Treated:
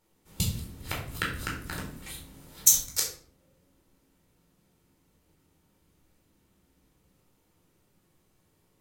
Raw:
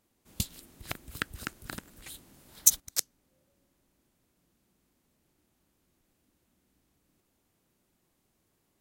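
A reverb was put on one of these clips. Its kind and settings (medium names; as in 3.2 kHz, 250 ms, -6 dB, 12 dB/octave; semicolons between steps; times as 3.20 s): simulated room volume 670 m³, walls furnished, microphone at 4.4 m; trim -1.5 dB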